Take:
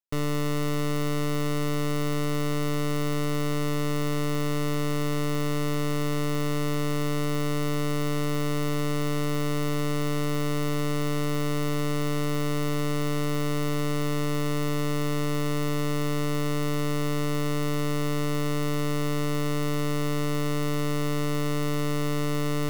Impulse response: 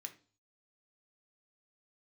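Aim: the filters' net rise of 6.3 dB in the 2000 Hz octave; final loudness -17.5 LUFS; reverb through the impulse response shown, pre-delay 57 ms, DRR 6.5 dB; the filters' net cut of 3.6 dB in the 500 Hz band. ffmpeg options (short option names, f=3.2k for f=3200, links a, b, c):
-filter_complex "[0:a]equalizer=f=500:t=o:g=-4.5,equalizer=f=2k:t=o:g=7.5,asplit=2[a][b];[1:a]atrim=start_sample=2205,adelay=57[c];[b][c]afir=irnorm=-1:irlink=0,volume=-2dB[d];[a][d]amix=inputs=2:normalize=0,volume=10.5dB"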